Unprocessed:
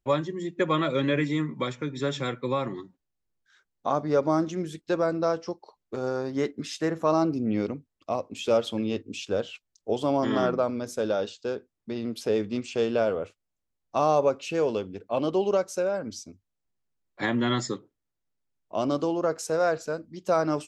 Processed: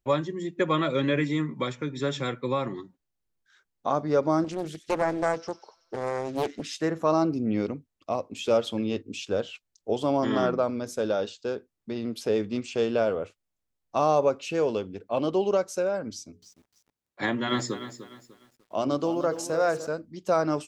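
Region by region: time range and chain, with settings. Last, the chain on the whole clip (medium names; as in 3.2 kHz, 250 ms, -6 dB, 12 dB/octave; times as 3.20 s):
4.44–6.74 s: feedback echo behind a high-pass 94 ms, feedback 61%, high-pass 2.5 kHz, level -11.5 dB + loudspeaker Doppler distortion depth 0.73 ms
16.12–19.87 s: high-pass 62 Hz + hum notches 60/120/180/240/300/360/420/480 Hz + bit-crushed delay 299 ms, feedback 35%, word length 9-bit, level -12 dB
whole clip: none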